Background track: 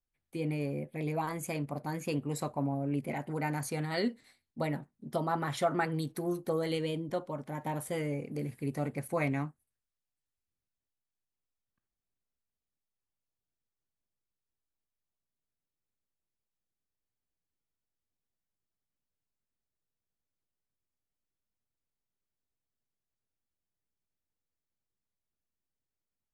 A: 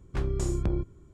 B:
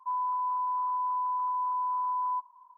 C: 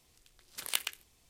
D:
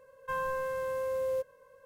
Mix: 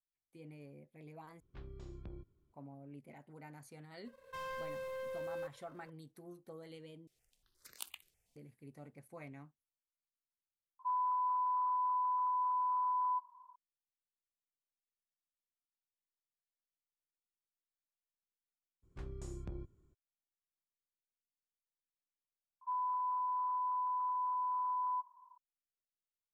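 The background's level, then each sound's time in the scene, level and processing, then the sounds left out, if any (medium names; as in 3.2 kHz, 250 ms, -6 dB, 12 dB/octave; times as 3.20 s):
background track -19.5 dB
1.40 s: replace with A -14.5 dB + four-pole ladder low-pass 5 kHz, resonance 30%
4.05 s: add D -15.5 dB + waveshaping leveller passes 3
7.07 s: replace with C -12 dB + stepped phaser 8.4 Hz 250–3200 Hz
10.79 s: add B -4 dB + resampled via 11.025 kHz
18.82 s: add A -17 dB, fades 0.02 s
22.61 s: add B -6 dB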